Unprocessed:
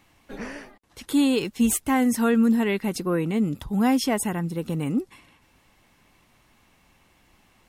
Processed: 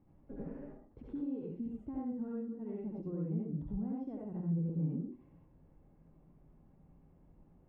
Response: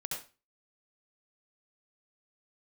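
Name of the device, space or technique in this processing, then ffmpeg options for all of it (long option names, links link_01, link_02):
television next door: -filter_complex "[0:a]acompressor=threshold=-38dB:ratio=4,lowpass=410[link_01];[1:a]atrim=start_sample=2205[link_02];[link_01][link_02]afir=irnorm=-1:irlink=0"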